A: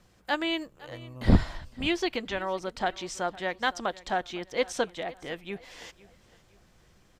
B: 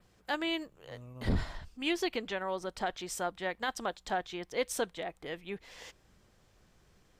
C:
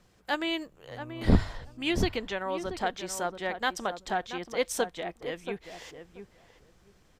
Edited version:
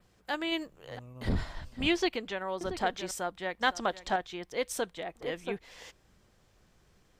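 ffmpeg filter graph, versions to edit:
-filter_complex "[2:a]asplit=3[a][b][c];[0:a]asplit=2[d][e];[1:a]asplit=6[f][g][h][i][j][k];[f]atrim=end=0.522[l];[a]atrim=start=0.518:end=0.992[m];[g]atrim=start=0.988:end=1.572[n];[d]atrim=start=1.568:end=2.092[o];[h]atrim=start=2.088:end=2.612[p];[b]atrim=start=2.608:end=3.112[q];[i]atrim=start=3.108:end=3.612[r];[e]atrim=start=3.608:end=4.162[s];[j]atrim=start=4.158:end=5.152[t];[c]atrim=start=5.148:end=5.592[u];[k]atrim=start=5.588[v];[l][m]acrossfade=d=0.004:c1=hsin:c2=hsin[w];[w][n]acrossfade=d=0.004:c1=hsin:c2=hsin[x];[x][o]acrossfade=d=0.004:c1=hsin:c2=hsin[y];[y][p]acrossfade=d=0.004:c1=hsin:c2=hsin[z];[z][q]acrossfade=d=0.004:c1=hsin:c2=hsin[aa];[aa][r]acrossfade=d=0.004:c1=hsin:c2=hsin[ab];[ab][s]acrossfade=d=0.004:c1=hsin:c2=hsin[ac];[ac][t]acrossfade=d=0.004:c1=hsin:c2=hsin[ad];[ad][u]acrossfade=d=0.004:c1=hsin:c2=hsin[ae];[ae][v]acrossfade=d=0.004:c1=hsin:c2=hsin"

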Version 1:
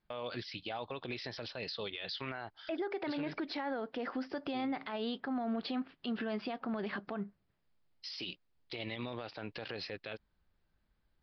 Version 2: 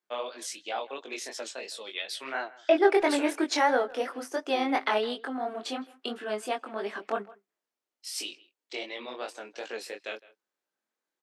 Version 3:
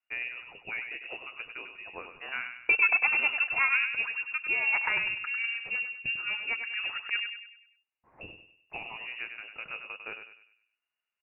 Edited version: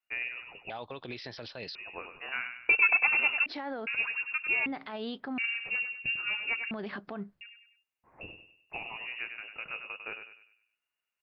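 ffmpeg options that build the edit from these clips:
-filter_complex "[0:a]asplit=4[a][b][c][d];[2:a]asplit=5[e][f][g][h][i];[e]atrim=end=0.702[j];[a]atrim=start=0.698:end=1.752[k];[f]atrim=start=1.748:end=3.462[l];[b]atrim=start=3.458:end=3.872[m];[g]atrim=start=3.868:end=4.662[n];[c]atrim=start=4.658:end=5.382[o];[h]atrim=start=5.378:end=6.712[p];[d]atrim=start=6.708:end=7.412[q];[i]atrim=start=7.408[r];[j][k]acrossfade=d=0.004:c1=hsin:c2=hsin[s];[s][l]acrossfade=d=0.004:c1=hsin:c2=hsin[t];[t][m]acrossfade=d=0.004:c1=hsin:c2=hsin[u];[u][n]acrossfade=d=0.004:c1=hsin:c2=hsin[v];[v][o]acrossfade=d=0.004:c1=hsin:c2=hsin[w];[w][p]acrossfade=d=0.004:c1=hsin:c2=hsin[x];[x][q]acrossfade=d=0.004:c1=hsin:c2=hsin[y];[y][r]acrossfade=d=0.004:c1=hsin:c2=hsin"

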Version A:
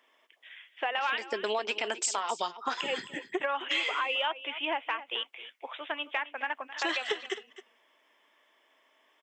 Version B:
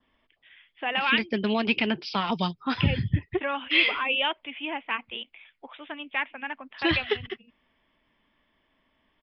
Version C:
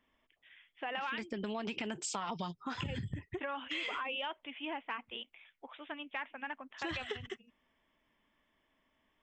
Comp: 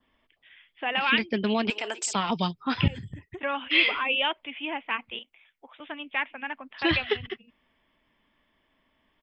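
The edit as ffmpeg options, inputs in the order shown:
-filter_complex "[2:a]asplit=2[a][b];[1:a]asplit=4[c][d][e][f];[c]atrim=end=1.702[g];[0:a]atrim=start=1.698:end=2.132[h];[d]atrim=start=2.128:end=2.882[i];[a]atrim=start=2.878:end=3.432[j];[e]atrim=start=3.428:end=5.192[k];[b]atrim=start=5.188:end=5.802[l];[f]atrim=start=5.798[m];[g][h]acrossfade=d=0.004:c1=hsin:c2=hsin[n];[n][i]acrossfade=d=0.004:c1=hsin:c2=hsin[o];[o][j]acrossfade=d=0.004:c1=hsin:c2=hsin[p];[p][k]acrossfade=d=0.004:c1=hsin:c2=hsin[q];[q][l]acrossfade=d=0.004:c1=hsin:c2=hsin[r];[r][m]acrossfade=d=0.004:c1=hsin:c2=hsin"

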